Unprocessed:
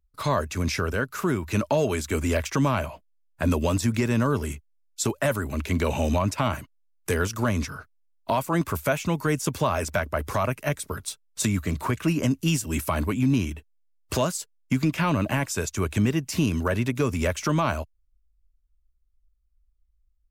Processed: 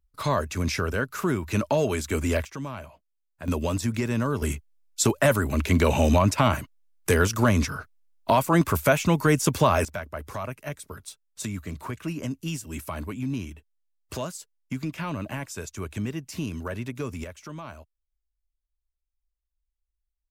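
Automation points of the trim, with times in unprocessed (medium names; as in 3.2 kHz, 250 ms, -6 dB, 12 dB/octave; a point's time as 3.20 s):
-0.5 dB
from 2.45 s -12 dB
from 3.48 s -3 dB
from 4.42 s +4 dB
from 9.85 s -8 dB
from 17.24 s -15.5 dB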